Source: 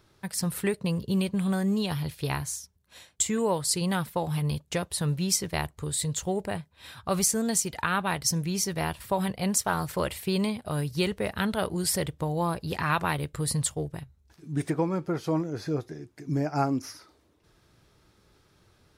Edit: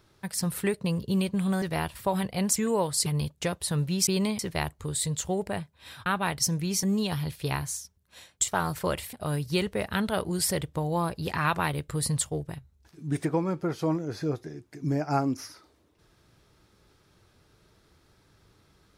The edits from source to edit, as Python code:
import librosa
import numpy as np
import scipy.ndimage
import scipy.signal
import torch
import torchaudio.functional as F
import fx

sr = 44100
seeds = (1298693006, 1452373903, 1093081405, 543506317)

y = fx.edit(x, sr, fx.swap(start_s=1.62, length_s=1.65, other_s=8.67, other_length_s=0.94),
    fx.cut(start_s=3.77, length_s=0.59),
    fx.cut(start_s=7.04, length_s=0.86),
    fx.move(start_s=10.26, length_s=0.32, to_s=5.37), tone=tone)